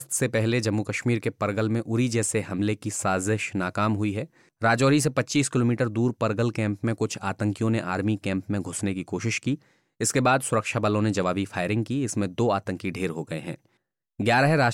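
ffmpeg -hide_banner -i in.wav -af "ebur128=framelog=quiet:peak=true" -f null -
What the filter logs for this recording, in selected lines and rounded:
Integrated loudness:
  I:         -25.4 LUFS
  Threshold: -35.6 LUFS
Loudness range:
  LRA:         3.1 LU
  Threshold: -45.7 LUFS
  LRA low:   -27.4 LUFS
  LRA high:  -24.3 LUFS
True peak:
  Peak:      -10.3 dBFS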